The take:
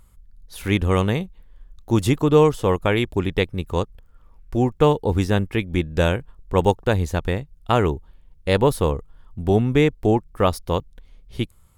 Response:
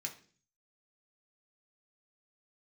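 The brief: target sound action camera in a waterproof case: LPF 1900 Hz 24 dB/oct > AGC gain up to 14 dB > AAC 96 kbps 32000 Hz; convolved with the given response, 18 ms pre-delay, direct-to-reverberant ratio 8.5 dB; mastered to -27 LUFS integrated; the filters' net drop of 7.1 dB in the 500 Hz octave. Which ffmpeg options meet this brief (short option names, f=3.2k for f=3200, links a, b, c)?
-filter_complex "[0:a]equalizer=f=500:t=o:g=-8.5,asplit=2[a][b];[1:a]atrim=start_sample=2205,adelay=18[c];[b][c]afir=irnorm=-1:irlink=0,volume=-7.5dB[d];[a][d]amix=inputs=2:normalize=0,lowpass=f=1.9k:w=0.5412,lowpass=f=1.9k:w=1.3066,dynaudnorm=m=14dB,volume=-3dB" -ar 32000 -c:a aac -b:a 96k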